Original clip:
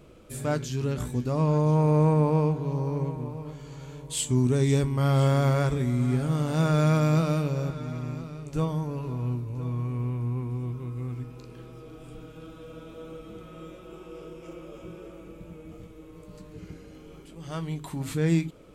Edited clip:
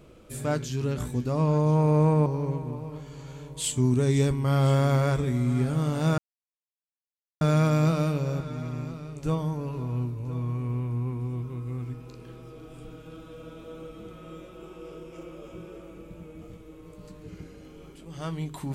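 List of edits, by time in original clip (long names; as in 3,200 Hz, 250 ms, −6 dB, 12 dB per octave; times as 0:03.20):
0:02.26–0:02.79: remove
0:06.71: splice in silence 1.23 s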